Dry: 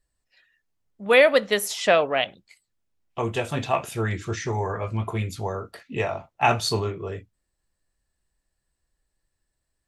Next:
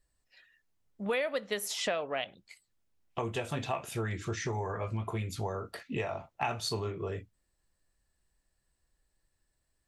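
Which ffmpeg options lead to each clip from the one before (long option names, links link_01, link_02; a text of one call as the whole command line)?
ffmpeg -i in.wav -af "acompressor=threshold=-32dB:ratio=4" out.wav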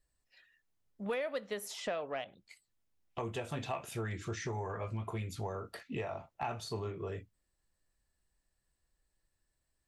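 ffmpeg -i in.wav -filter_complex "[0:a]acrossover=split=1600[link_01][link_02];[link_02]alimiter=level_in=7dB:limit=-24dB:level=0:latency=1:release=275,volume=-7dB[link_03];[link_01][link_03]amix=inputs=2:normalize=0,asoftclip=type=tanh:threshold=-20dB,volume=-3.5dB" out.wav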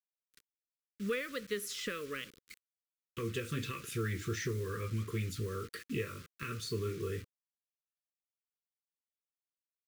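ffmpeg -i in.wav -af "acrusher=bits=8:mix=0:aa=0.000001,asuperstop=centerf=760:order=8:qfactor=1.1,volume=3dB" out.wav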